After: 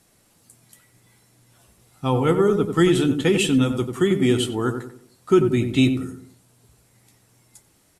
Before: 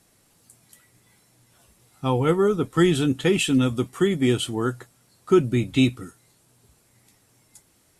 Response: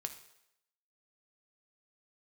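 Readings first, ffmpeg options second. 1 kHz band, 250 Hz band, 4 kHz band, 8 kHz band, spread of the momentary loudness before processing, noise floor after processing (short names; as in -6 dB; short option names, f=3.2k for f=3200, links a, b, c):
+1.5 dB, +2.0 dB, +1.0 dB, +1.0 dB, 8 LU, -60 dBFS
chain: -filter_complex "[0:a]asplit=2[a][b];[b]adelay=92,lowpass=f=1.1k:p=1,volume=-6dB,asplit=2[c][d];[d]adelay=92,lowpass=f=1.1k:p=1,volume=0.43,asplit=2[e][f];[f]adelay=92,lowpass=f=1.1k:p=1,volume=0.43,asplit=2[g][h];[h]adelay=92,lowpass=f=1.1k:p=1,volume=0.43,asplit=2[i][j];[j]adelay=92,lowpass=f=1.1k:p=1,volume=0.43[k];[a][c][e][g][i][k]amix=inputs=6:normalize=0,volume=1dB"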